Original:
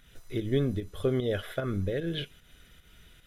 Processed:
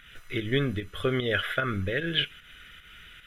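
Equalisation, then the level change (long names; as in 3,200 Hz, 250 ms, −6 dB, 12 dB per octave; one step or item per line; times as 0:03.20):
flat-topped bell 2,000 Hz +13 dB
0.0 dB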